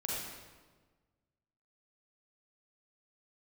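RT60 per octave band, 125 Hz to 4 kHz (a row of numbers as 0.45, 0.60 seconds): 1.8, 1.6, 1.5, 1.3, 1.1, 1.0 seconds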